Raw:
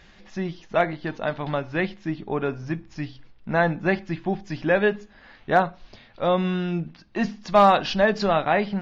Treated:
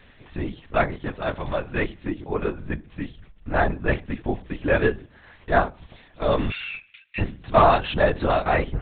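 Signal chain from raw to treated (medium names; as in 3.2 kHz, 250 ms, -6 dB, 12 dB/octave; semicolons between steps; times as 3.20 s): 6.50–7.19 s: resonant high-pass 2.4 kHz, resonance Q 5.4; LPC vocoder at 8 kHz whisper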